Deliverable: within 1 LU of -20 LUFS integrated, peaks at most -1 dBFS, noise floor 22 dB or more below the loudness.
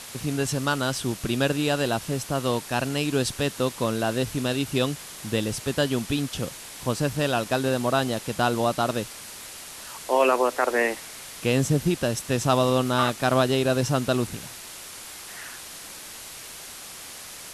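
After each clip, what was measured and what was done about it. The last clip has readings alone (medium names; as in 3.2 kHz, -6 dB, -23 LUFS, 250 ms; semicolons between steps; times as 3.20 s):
noise floor -41 dBFS; noise floor target -47 dBFS; loudness -25.0 LUFS; peak level -7.0 dBFS; loudness target -20.0 LUFS
-> noise reduction 6 dB, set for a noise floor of -41 dBFS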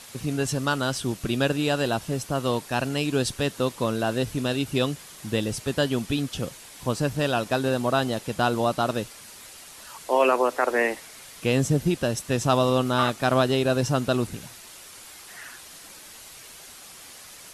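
noise floor -45 dBFS; noise floor target -47 dBFS
-> noise reduction 6 dB, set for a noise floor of -45 dBFS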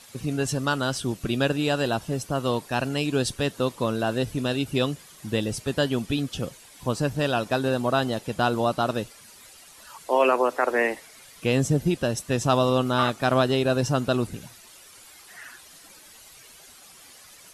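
noise floor -50 dBFS; loudness -25.0 LUFS; peak level -7.5 dBFS; loudness target -20.0 LUFS
-> trim +5 dB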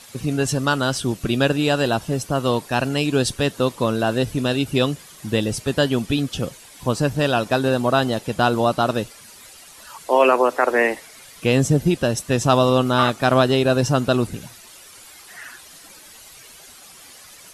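loudness -20.0 LUFS; peak level -2.5 dBFS; noise floor -45 dBFS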